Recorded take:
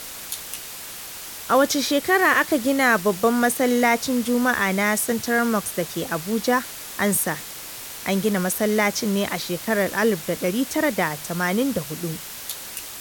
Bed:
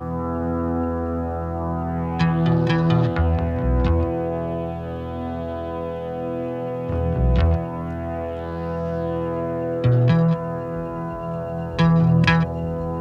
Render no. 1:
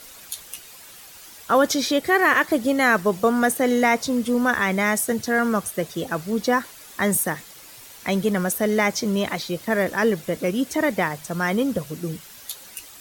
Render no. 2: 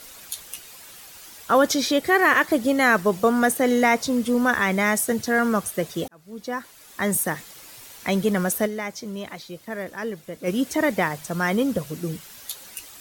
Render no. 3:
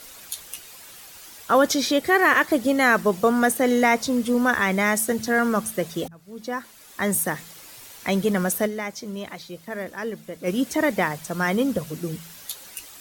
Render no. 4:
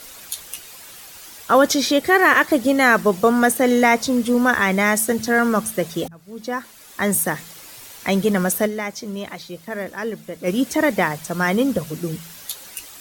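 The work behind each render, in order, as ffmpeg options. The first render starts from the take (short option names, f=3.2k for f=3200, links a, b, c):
-af "afftdn=nr=10:nf=-36"
-filter_complex "[0:a]asplit=4[a][b][c][d];[a]atrim=end=6.08,asetpts=PTS-STARTPTS,afade=t=out:st=6.076:d=0.004:c=hsin[e];[b]atrim=start=6.08:end=8.86,asetpts=PTS-STARTPTS,afade=t=in:d=1.29,afade=t=out:st=2.57:d=0.21:c=exp:silence=0.316228[f];[c]atrim=start=8.86:end=10.27,asetpts=PTS-STARTPTS,volume=-10dB[g];[d]atrim=start=10.27,asetpts=PTS-STARTPTS,afade=t=in:d=0.21:c=exp:silence=0.316228[h];[e][f][g][h]concat=n=4:v=0:a=1"
-af "bandreject=f=55.41:t=h:w=4,bandreject=f=110.82:t=h:w=4,bandreject=f=166.23:t=h:w=4,bandreject=f=221.64:t=h:w=4"
-af "volume=3.5dB"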